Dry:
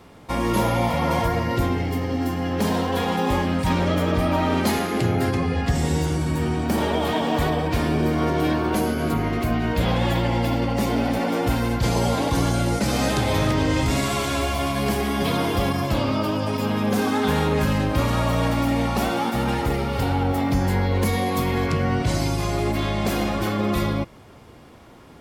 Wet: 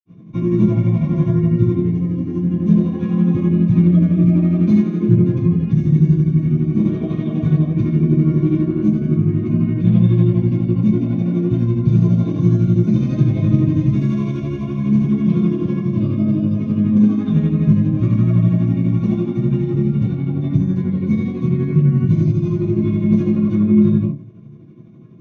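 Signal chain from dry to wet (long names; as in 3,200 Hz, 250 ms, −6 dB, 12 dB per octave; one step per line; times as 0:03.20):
low-pass filter 12,000 Hz
hum removal 45.83 Hz, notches 28
granular cloud 134 ms, grains 12 per second, spray 34 ms, pitch spread up and down by 0 semitones
convolution reverb, pre-delay 47 ms
level +5.5 dB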